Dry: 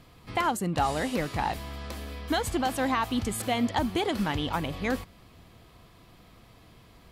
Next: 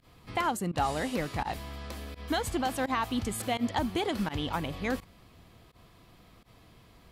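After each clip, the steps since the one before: pump 84 bpm, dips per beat 1, -24 dB, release 82 ms; gain -2.5 dB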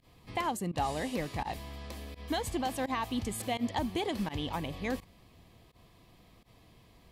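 bell 1400 Hz -11.5 dB 0.24 oct; gain -2.5 dB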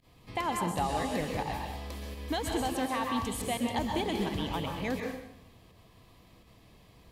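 plate-style reverb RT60 0.77 s, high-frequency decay 0.85×, pre-delay 0.11 s, DRR 1.5 dB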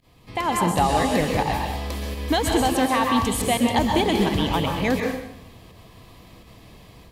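AGC gain up to 7 dB; gain +4 dB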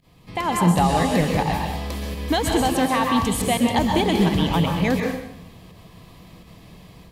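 bell 170 Hz +10 dB 0.32 oct

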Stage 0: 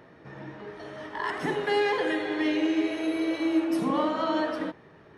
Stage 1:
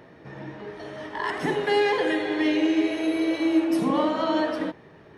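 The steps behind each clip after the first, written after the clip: bell 1300 Hz -3.5 dB 0.6 oct; gain +3.5 dB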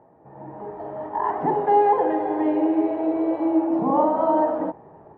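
AGC gain up to 9.5 dB; synth low-pass 840 Hz, resonance Q 3.7; gain -9 dB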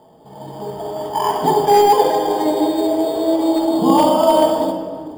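in parallel at -3 dB: sample-and-hold 11×; on the sum: overloaded stage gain 7.5 dB; shoebox room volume 2500 m³, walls mixed, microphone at 1.5 m

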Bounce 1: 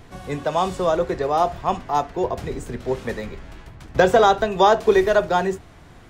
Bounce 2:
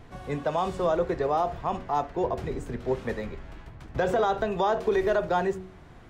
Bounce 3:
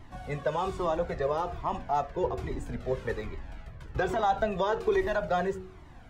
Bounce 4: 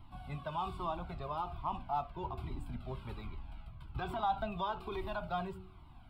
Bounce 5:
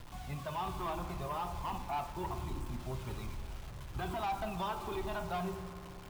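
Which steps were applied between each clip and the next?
high shelf 3700 Hz -8.5 dB; de-hum 93.3 Hz, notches 6; limiter -13 dBFS, peak gain reduction 8.5 dB; gain -3 dB
cascading flanger falling 1.2 Hz; gain +2.5 dB
fixed phaser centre 1800 Hz, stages 6; gain -4.5 dB
bit-crush 9-bit; soft clip -34.5 dBFS, distortion -11 dB; reverb RT60 3.0 s, pre-delay 3 ms, DRR 8 dB; gain +2.5 dB

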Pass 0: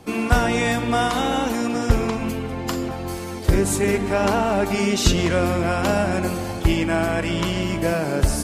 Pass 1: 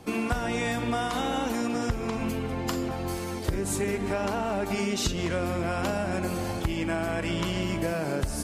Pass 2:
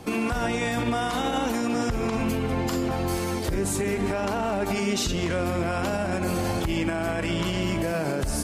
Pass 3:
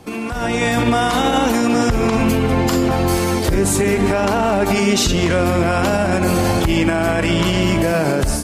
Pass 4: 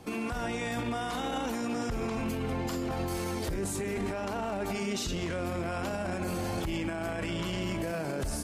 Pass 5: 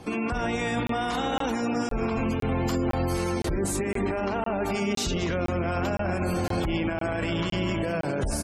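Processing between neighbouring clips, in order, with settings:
compressor, threshold -22 dBFS, peak gain reduction 12 dB; gain -2.5 dB
limiter -22.5 dBFS, peak gain reduction 8 dB; gain +5.5 dB
AGC gain up to 10 dB
limiter -17.5 dBFS, peak gain reduction 10.5 dB; gain -7.5 dB
feedback echo 0.229 s, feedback 59%, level -13 dB; spectral gate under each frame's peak -30 dB strong; crackling interface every 0.51 s, samples 1024, zero, from 0.87; gain +5.5 dB

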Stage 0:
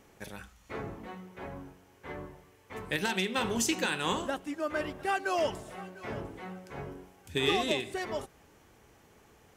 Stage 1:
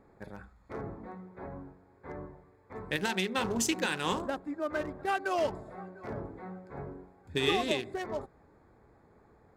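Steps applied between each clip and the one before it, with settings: Wiener smoothing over 15 samples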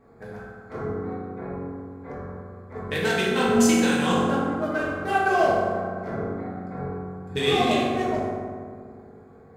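reverb RT60 2.0 s, pre-delay 3 ms, DRR -8 dB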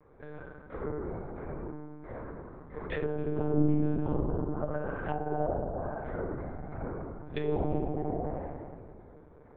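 treble ducked by the level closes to 520 Hz, closed at -20.5 dBFS; monotone LPC vocoder at 8 kHz 150 Hz; gain -5.5 dB

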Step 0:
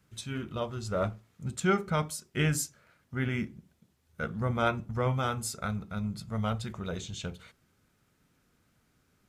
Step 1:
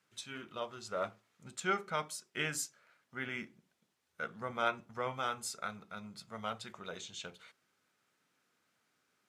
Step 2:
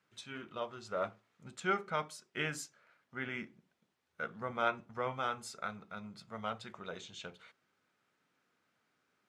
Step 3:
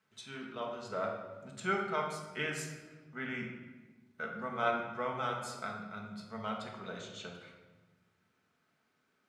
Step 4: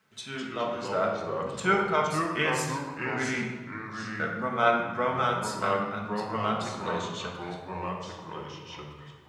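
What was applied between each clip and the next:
weighting filter A; gain -4 dB
LPF 3000 Hz 6 dB/oct; gain +1 dB
shoebox room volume 900 m³, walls mixed, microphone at 1.5 m; gain -1.5 dB
echoes that change speed 0.169 s, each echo -3 st, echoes 2, each echo -6 dB; gain +8.5 dB

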